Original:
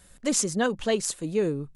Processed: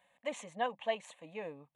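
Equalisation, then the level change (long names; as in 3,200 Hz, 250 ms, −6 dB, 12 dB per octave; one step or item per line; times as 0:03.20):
high-pass filter 560 Hz 12 dB per octave
head-to-tape spacing loss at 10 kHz 28 dB
phaser with its sweep stopped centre 1,400 Hz, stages 6
+1.0 dB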